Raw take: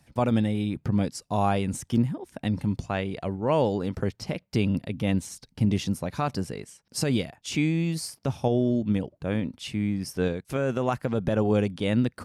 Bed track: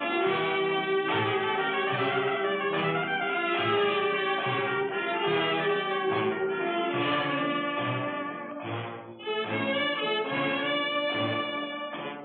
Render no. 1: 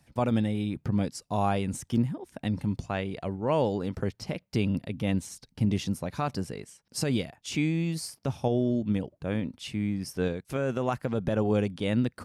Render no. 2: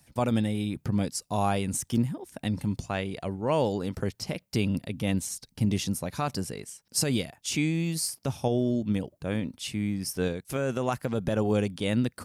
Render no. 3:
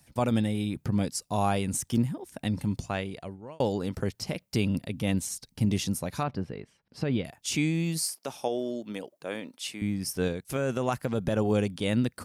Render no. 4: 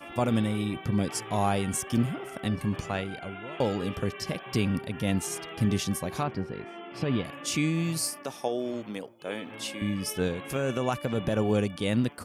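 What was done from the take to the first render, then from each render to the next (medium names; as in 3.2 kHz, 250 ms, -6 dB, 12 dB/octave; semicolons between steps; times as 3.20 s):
trim -2.5 dB
treble shelf 5.5 kHz +12 dB
2.90–3.60 s: fade out; 6.23–7.25 s: distance through air 360 m; 8.03–9.82 s: high-pass 390 Hz
add bed track -14 dB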